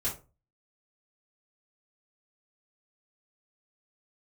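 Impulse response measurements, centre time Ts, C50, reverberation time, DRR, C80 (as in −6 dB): 22 ms, 9.5 dB, 0.30 s, −8.5 dB, 17.0 dB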